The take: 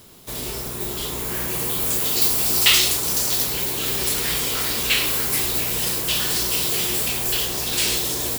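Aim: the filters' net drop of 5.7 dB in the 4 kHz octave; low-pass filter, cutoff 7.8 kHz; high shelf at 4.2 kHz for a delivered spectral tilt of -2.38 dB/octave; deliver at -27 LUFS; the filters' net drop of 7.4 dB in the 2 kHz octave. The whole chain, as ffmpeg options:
-af "lowpass=7800,equalizer=f=2000:t=o:g=-8.5,equalizer=f=4000:t=o:g=-7,highshelf=f=4200:g=4.5,volume=0.841"

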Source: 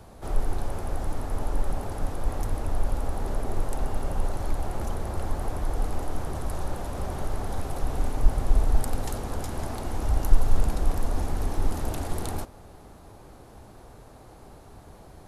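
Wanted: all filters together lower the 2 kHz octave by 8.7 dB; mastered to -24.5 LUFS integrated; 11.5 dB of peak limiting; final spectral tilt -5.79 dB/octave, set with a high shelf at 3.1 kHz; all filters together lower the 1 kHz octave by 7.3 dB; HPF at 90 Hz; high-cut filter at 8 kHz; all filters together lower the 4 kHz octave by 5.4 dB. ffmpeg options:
-af "highpass=90,lowpass=8000,equalizer=f=1000:t=o:g=-9,equalizer=f=2000:t=o:g=-8,highshelf=f=3100:g=5.5,equalizer=f=4000:t=o:g=-8.5,volume=5.96,alimiter=limit=0.188:level=0:latency=1"

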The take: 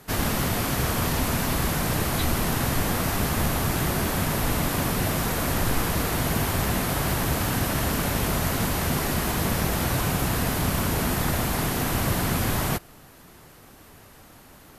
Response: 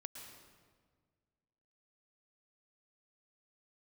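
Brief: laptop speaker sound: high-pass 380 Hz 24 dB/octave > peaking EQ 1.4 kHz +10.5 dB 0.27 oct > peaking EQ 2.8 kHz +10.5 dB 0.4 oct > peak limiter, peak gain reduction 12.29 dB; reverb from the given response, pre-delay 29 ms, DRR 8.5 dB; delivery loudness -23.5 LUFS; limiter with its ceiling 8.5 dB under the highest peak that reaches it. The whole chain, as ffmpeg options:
-filter_complex "[0:a]alimiter=limit=0.112:level=0:latency=1,asplit=2[s0][s1];[1:a]atrim=start_sample=2205,adelay=29[s2];[s1][s2]afir=irnorm=-1:irlink=0,volume=0.596[s3];[s0][s3]amix=inputs=2:normalize=0,highpass=f=380:w=0.5412,highpass=f=380:w=1.3066,equalizer=f=1400:t=o:w=0.27:g=10.5,equalizer=f=2800:t=o:w=0.4:g=10.5,volume=3.35,alimiter=limit=0.158:level=0:latency=1"

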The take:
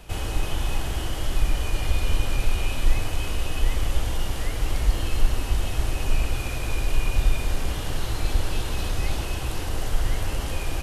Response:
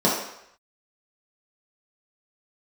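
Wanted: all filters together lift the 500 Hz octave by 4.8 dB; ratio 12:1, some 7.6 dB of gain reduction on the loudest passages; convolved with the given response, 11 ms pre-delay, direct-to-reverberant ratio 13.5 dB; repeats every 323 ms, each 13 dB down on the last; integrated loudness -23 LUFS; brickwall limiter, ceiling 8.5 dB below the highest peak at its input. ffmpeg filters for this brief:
-filter_complex "[0:a]equalizer=f=500:t=o:g=6,acompressor=threshold=0.112:ratio=12,alimiter=limit=0.0841:level=0:latency=1,aecho=1:1:323|646|969:0.224|0.0493|0.0108,asplit=2[s0][s1];[1:a]atrim=start_sample=2205,adelay=11[s2];[s1][s2]afir=irnorm=-1:irlink=0,volume=0.0266[s3];[s0][s3]amix=inputs=2:normalize=0,volume=3.35"

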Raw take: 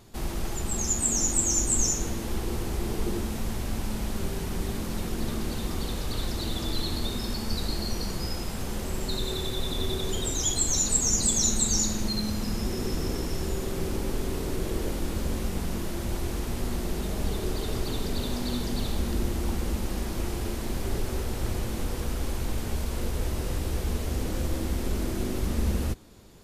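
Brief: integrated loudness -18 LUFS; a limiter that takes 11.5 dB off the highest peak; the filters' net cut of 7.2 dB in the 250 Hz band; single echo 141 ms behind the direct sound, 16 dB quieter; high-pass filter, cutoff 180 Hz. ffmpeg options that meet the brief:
-af "highpass=180,equalizer=f=250:t=o:g=-8,alimiter=limit=0.075:level=0:latency=1,aecho=1:1:141:0.158,volume=6.31"

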